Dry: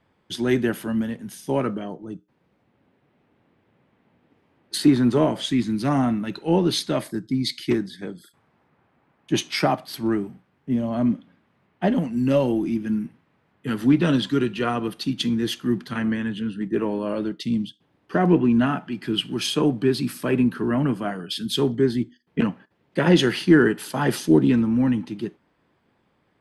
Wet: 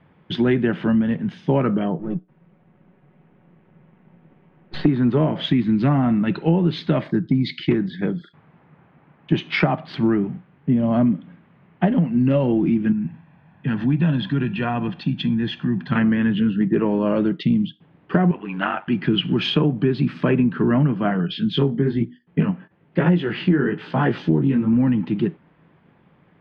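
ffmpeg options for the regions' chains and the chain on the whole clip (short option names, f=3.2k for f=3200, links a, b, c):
-filter_complex "[0:a]asettb=1/sr,asplit=3[a][b][c];[a]atrim=end=1.994[d];[b]atrim=start=1.99:end=4.86,asetpts=PTS-STARTPTS,afade=t=in:d=0.004:c=qsin,afade=t=out:st=2.866:d=0.004:c=qsin,aeval=exprs='if(lt(val(0),0),0.447*val(0),val(0))':c=same,lowpass=f=2.6k:p=1,aecho=1:1:5.4:0.38,atrim=end_sample=126567[e];[c]atrim=start=4.856[f];[d][e]acrossfade=d=0.004:c1=hsin:c2=qsin[g];[g][f]acrossfade=d=0.004:c1=qsin:c2=hsin,asettb=1/sr,asplit=3[h][i][j];[h]atrim=end=12.924[k];[i]atrim=start=12.92:end=15.92,asetpts=PTS-STARTPTS,afade=t=in:d=0.004:c=qsin,afade=t=out:st=2.996:d=0.004:c=qsin,aecho=1:1:1.2:0.52,atrim=end_sample=132300,acompressor=threshold=-42dB:ratio=1.5:attack=3.2:release=140:knee=1:detection=peak[l];[j]atrim=start=15.916[m];[k][l]acrossfade=d=0.004:c1=hsin:c2=qsin[n];[n][m]acrossfade=d=0.004:c1=qsin:c2=hsin,asettb=1/sr,asplit=3[o][p][q];[o]atrim=end=18.314[r];[p]atrim=start=18.31:end=18.88,asetpts=PTS-STARTPTS,afade=t=in:d=0.004:c=qsin,afade=t=out:st=0.566:d=0.004:c=qsin,highpass=720,aecho=1:1:7.3:0.46,atrim=end_sample=25137,aeval=exprs='val(0)*sin(2*PI*48*n/s)':c=same[s];[q]atrim=start=18.876[t];[r][s]acrossfade=d=0.004:c1=hsin:c2=qsin[u];[u][t]acrossfade=d=0.004:c1=qsin:c2=hsin,asettb=1/sr,asplit=3[v][w][x];[v]atrim=end=21.274[y];[w]atrim=start=21.27:end=24.73,asetpts=PTS-STARTPTS,afade=t=in:d=0.004:c=qsin,afade=t=out:st=3.456:d=0.004:c=qsin,highshelf=f=5.3k:g=-5,flanger=delay=16.5:depth=5.4:speed=1.1[z];[x]atrim=start=24.726[aa];[y][z]acrossfade=d=0.004:c1=hsin:c2=qsin[ab];[ab][aa]acrossfade=d=0.004:c1=qsin:c2=hsin,lowpass=f=3.1k:w=0.5412,lowpass=f=3.1k:w=1.3066,equalizer=f=160:t=o:w=0.5:g=11,acompressor=threshold=-23dB:ratio=6,volume=8dB"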